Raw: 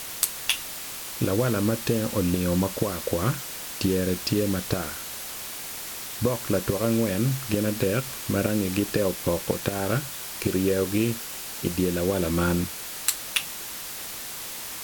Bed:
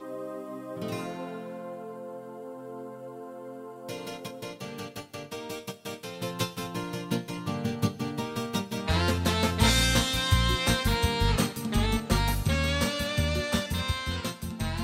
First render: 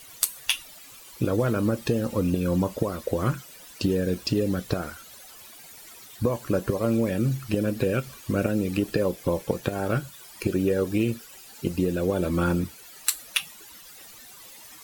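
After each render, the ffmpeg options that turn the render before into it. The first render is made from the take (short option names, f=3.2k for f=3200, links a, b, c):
-af "afftdn=nr=15:nf=-36"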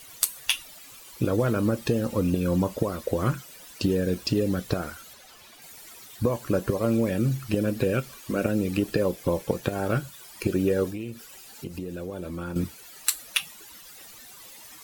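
-filter_complex "[0:a]asettb=1/sr,asplit=3[a][b][c];[a]atrim=end=5.134[d];[b]atrim=start=5.13:end=5.62,asetpts=PTS-STARTPTS,afade=t=in:d=0.004:c=qsin,afade=t=out:st=0.486:d=0.004:c=qsin,acrossover=split=6000[e][f];[f]acompressor=threshold=-53dB:ratio=4:attack=1:release=60[g];[e][g]amix=inputs=2:normalize=0[h];[c]atrim=start=5.616[i];[d][h]acrossfade=d=0.004:c1=hsin:c2=qsin[j];[j][i]acrossfade=d=0.004:c1=qsin:c2=hsin,asettb=1/sr,asplit=3[k][l][m];[k]atrim=end=8.044[n];[l]atrim=start=8.04:end=8.45,asetpts=PTS-STARTPTS,afade=t=in:d=0.004:c=qsin,afade=t=out:st=0.406:d=0.004:c=qsin,equalizer=f=100:w=1.5:g=-13.5[o];[m]atrim=start=8.446[p];[n][o]acrossfade=d=0.004:c1=hsin:c2=qsin[q];[q][p]acrossfade=d=0.004:c1=qsin:c2=hsin,asettb=1/sr,asplit=3[r][s][t];[r]atrim=end=10.904[u];[s]atrim=start=10.9:end=12.56,asetpts=PTS-STARTPTS,afade=t=in:d=0.004:c=qsin,afade=t=out:st=1.656:d=0.004:c=qsin,acompressor=threshold=-35dB:ratio=2.5:attack=3.2:release=140:knee=1:detection=peak[v];[t]atrim=start=12.556[w];[u][v]acrossfade=d=0.004:c1=hsin:c2=qsin[x];[x][w]acrossfade=d=0.004:c1=qsin:c2=hsin"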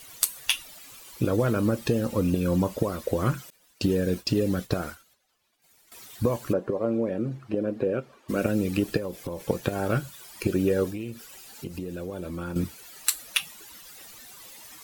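-filter_complex "[0:a]asettb=1/sr,asplit=3[a][b][c];[a]atrim=end=3.504[d];[b]atrim=start=3.5:end=5.92,asetpts=PTS-STARTPTS,afade=t=in:d=0.004:c=qsin,afade=t=out:st=2.416:d=0.004:c=qsin,agate=range=-33dB:threshold=-37dB:ratio=3:release=100:detection=peak[e];[c]atrim=start=5.916[f];[d][e]acrossfade=d=0.004:c1=hsin:c2=qsin[g];[g][f]acrossfade=d=0.004:c1=qsin:c2=hsin,asplit=3[h][i][j];[h]afade=t=out:st=6.52:d=0.02[k];[i]bandpass=f=490:t=q:w=0.72,afade=t=in:st=6.52:d=0.02,afade=t=out:st=8.28:d=0.02[l];[j]afade=t=in:st=8.28:d=0.02[m];[k][l][m]amix=inputs=3:normalize=0,asettb=1/sr,asplit=3[n][o][p];[n]atrim=end=8.974[q];[o]atrim=start=8.97:end=9.47,asetpts=PTS-STARTPTS,afade=t=in:d=0.004:c=qsin,afade=t=out:st=0.496:d=0.004:c=qsin,acompressor=threshold=-29dB:ratio=5:attack=3.2:release=140:knee=1:detection=peak[r];[p]atrim=start=9.466[s];[q][r]acrossfade=d=0.004:c1=hsin:c2=qsin[t];[t][s]acrossfade=d=0.004:c1=qsin:c2=hsin"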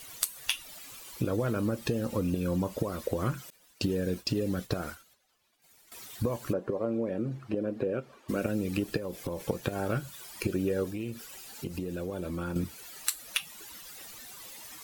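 -af "acompressor=threshold=-30dB:ratio=2"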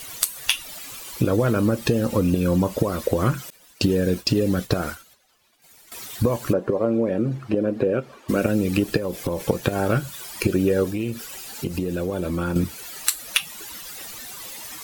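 -af "volume=9.5dB,alimiter=limit=-1dB:level=0:latency=1"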